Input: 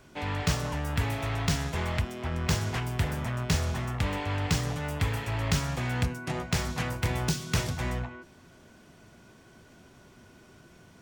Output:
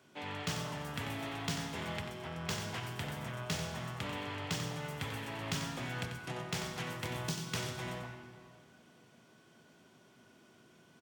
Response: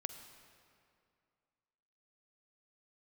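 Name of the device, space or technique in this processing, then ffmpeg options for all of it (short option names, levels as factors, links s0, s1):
PA in a hall: -filter_complex "[0:a]highpass=140,equalizer=f=3200:t=o:w=0.4:g=4,aecho=1:1:91:0.376[s0];[1:a]atrim=start_sample=2205[s1];[s0][s1]afir=irnorm=-1:irlink=0,highpass=74,volume=0.501"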